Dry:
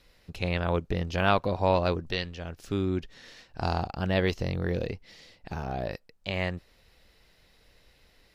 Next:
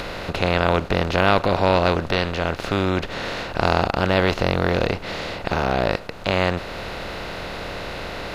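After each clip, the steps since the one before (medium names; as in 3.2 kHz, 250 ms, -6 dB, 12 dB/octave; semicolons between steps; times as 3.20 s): spectral levelling over time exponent 0.4; in parallel at -2.5 dB: upward compressor, threshold -26 dBFS; on the sum: trim -1.5 dB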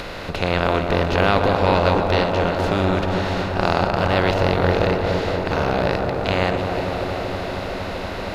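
backward echo that repeats 170 ms, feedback 70%, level -11 dB; feedback echo behind a low-pass 233 ms, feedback 84%, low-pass 1.2 kHz, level -5.5 dB; trim -1 dB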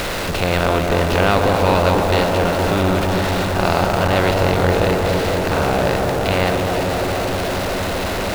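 jump at every zero crossing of -20.5 dBFS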